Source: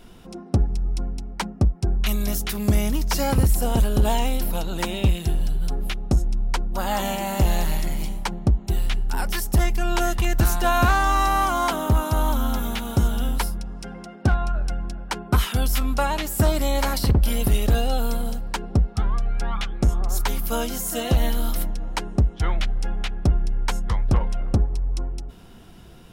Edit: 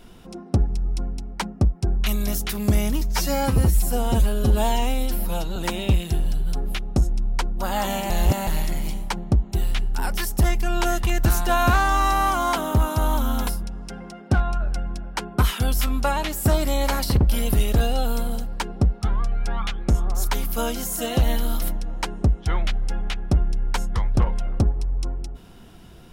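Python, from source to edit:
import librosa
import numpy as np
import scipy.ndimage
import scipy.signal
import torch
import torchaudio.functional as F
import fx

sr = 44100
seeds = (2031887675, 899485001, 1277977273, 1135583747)

y = fx.edit(x, sr, fx.stretch_span(start_s=3.01, length_s=1.7, factor=1.5),
    fx.reverse_span(start_s=7.25, length_s=0.37),
    fx.cut(start_s=12.62, length_s=0.79), tone=tone)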